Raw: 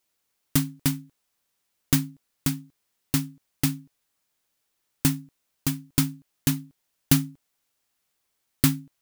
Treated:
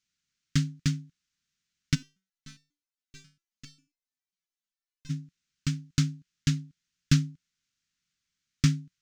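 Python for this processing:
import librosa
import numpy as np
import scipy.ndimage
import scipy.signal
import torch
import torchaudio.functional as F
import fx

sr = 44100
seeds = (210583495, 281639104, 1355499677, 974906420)

y = fx.self_delay(x, sr, depth_ms=0.18)
y = fx.curve_eq(y, sr, hz=(110.0, 170.0, 750.0, 1400.0, 6500.0, 12000.0), db=(0, 5, -29, -3, 0, -26))
y = fx.resonator_held(y, sr, hz=7.4, low_hz=190.0, high_hz=520.0, at=(1.94, 5.09), fade=0.02)
y = y * 10.0 ** (-1.5 / 20.0)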